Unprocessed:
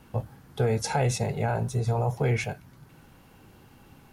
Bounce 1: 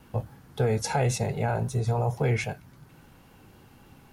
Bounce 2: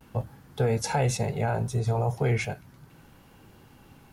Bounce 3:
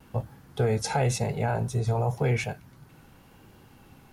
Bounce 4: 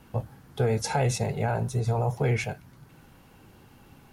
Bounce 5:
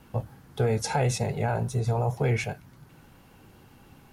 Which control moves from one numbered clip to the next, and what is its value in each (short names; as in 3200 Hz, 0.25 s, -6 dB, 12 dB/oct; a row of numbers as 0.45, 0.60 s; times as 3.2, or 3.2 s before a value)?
vibrato, rate: 3.7, 0.37, 0.94, 13, 7.6 Hz